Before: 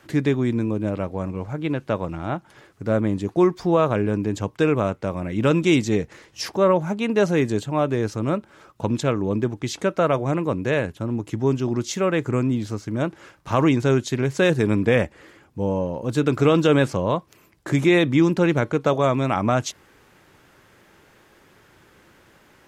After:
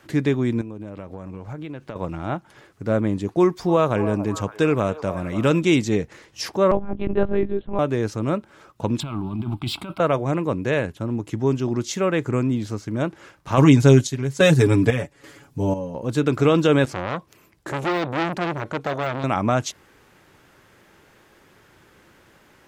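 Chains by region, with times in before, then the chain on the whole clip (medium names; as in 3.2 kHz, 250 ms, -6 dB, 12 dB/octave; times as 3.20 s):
0.61–1.96 s: median filter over 3 samples + compression 12:1, threshold -29 dBFS
3.40–5.60 s: treble shelf 6.4 kHz +6 dB + repeats whose band climbs or falls 280 ms, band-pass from 740 Hz, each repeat 0.7 oct, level -8.5 dB
6.71–7.79 s: peaking EQ 3.1 kHz -10 dB 2.2 oct + monotone LPC vocoder at 8 kHz 200 Hz + gate -31 dBFS, range -7 dB
9.00–10.00 s: compressor with a negative ratio -27 dBFS + waveshaping leveller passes 1 + static phaser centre 1.8 kHz, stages 6
13.57–15.95 s: tone controls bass +4 dB, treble +8 dB + comb 7.1 ms, depth 83% + square tremolo 1.2 Hz, depth 65%, duty 60%
16.85–19.24 s: de-esser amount 70% + transformer saturation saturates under 1.8 kHz
whole clip: none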